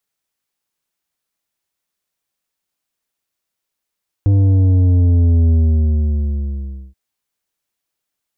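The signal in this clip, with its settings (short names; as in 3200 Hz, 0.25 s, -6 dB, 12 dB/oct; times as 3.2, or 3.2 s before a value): sub drop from 100 Hz, over 2.68 s, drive 8.5 dB, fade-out 1.44 s, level -10 dB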